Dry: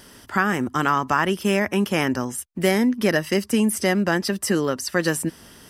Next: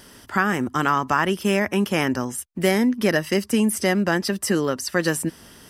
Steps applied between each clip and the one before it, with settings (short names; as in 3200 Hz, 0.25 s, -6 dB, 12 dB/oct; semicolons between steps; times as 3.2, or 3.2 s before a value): nothing audible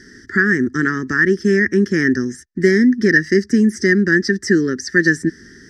EQ curve 130 Hz 0 dB, 240 Hz +4 dB, 390 Hz +6 dB, 650 Hz -27 dB, 1000 Hz -24 dB, 1800 Hz +12 dB, 2600 Hz -22 dB, 5600 Hz +3 dB, 12000 Hz -27 dB; gain +3 dB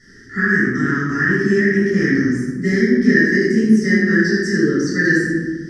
reverb RT60 1.2 s, pre-delay 9 ms, DRR -9 dB; gain -12.5 dB